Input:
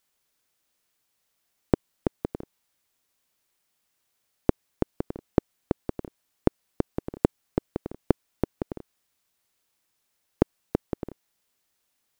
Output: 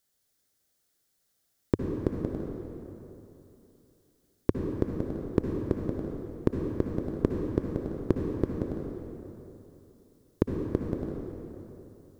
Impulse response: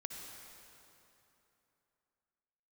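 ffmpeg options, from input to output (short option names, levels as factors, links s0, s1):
-filter_complex "[0:a]equalizer=f=100:t=o:w=0.67:g=4,equalizer=f=1000:t=o:w=0.67:g=-9,equalizer=f=2500:t=o:w=0.67:g=-9,acontrast=44[s0];[1:a]atrim=start_sample=2205[s1];[s0][s1]afir=irnorm=-1:irlink=0,volume=0.794"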